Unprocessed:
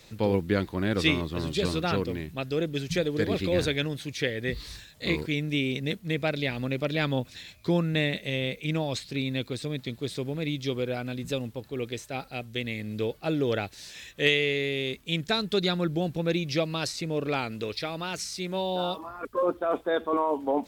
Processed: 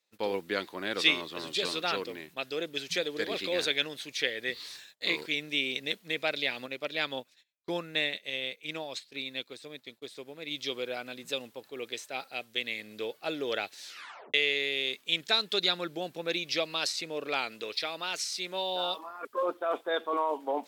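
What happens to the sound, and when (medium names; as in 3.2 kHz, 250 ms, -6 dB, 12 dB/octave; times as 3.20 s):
6.66–10.51 s: upward expansion, over -47 dBFS
13.83 s: tape stop 0.51 s
whole clip: Bessel high-pass 540 Hz, order 2; gate -51 dBFS, range -25 dB; dynamic bell 3.6 kHz, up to +5 dB, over -43 dBFS, Q 0.98; trim -1.5 dB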